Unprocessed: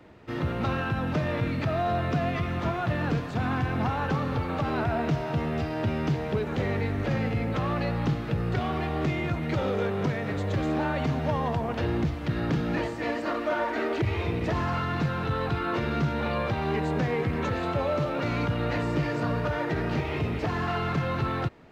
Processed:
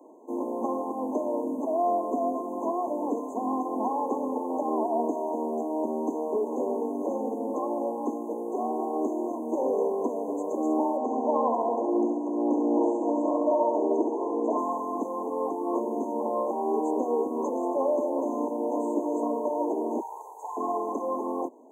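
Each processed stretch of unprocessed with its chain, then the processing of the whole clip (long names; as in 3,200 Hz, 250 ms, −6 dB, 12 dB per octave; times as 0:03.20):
0:10.97–0:14.58: band-pass filter 220–5,600 Hz + flutter between parallel walls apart 11.7 metres, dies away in 0.93 s
0:20.00–0:20.57: high-pass filter 870 Hz 24 dB per octave + comb filter 2.3 ms, depth 58%
whole clip: Butterworth high-pass 240 Hz 72 dB per octave; brick-wall band-stop 1,100–6,200 Hz; level +3 dB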